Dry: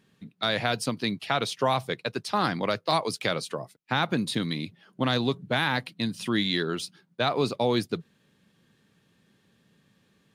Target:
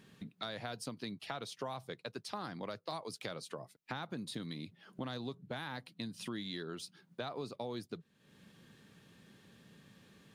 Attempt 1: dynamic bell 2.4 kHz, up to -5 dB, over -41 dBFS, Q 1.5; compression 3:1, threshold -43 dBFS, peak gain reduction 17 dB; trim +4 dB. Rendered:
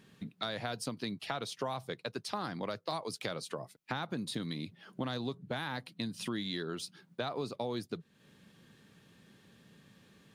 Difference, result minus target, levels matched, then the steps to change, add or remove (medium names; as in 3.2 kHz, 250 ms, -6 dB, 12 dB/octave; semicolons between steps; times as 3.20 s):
compression: peak gain reduction -4.5 dB
change: compression 3:1, threshold -50 dBFS, peak gain reduction 21.5 dB